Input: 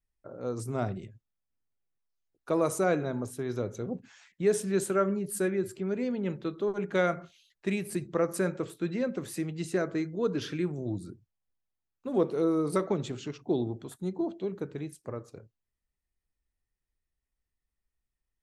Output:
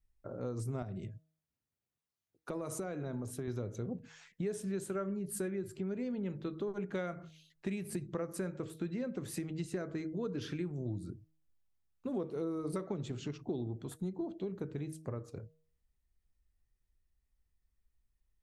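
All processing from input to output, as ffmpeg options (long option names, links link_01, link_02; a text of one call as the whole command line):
ffmpeg -i in.wav -filter_complex "[0:a]asettb=1/sr,asplit=3[link_01][link_02][link_03];[link_01]atrim=end=0.824[link_04];[link_02]atrim=start=0.82:end=3.48,asetpts=PTS-STARTPTS,afade=type=in:duration=0.004:curve=qsin,afade=type=out:start_time=2.656:duration=0.004:curve=qsin,highpass=92,acompressor=threshold=-36dB:ratio=2.5:attack=3.2:release=140:knee=1:detection=peak[link_05];[link_03]atrim=start=3.476[link_06];[link_04][link_05]acrossfade=duration=0.004:curve1=hsin:curve2=qsin[link_07];[link_07][link_06]acrossfade=duration=0.004:curve1=qsin:curve2=hsin,lowshelf=frequency=170:gain=10.5,bandreject=frequency=158.1:width_type=h:width=4,bandreject=frequency=316.2:width_type=h:width=4,bandreject=frequency=474.3:width_type=h:width=4,bandreject=frequency=632.4:width_type=h:width=4,acompressor=threshold=-35dB:ratio=4,volume=-1dB" out.wav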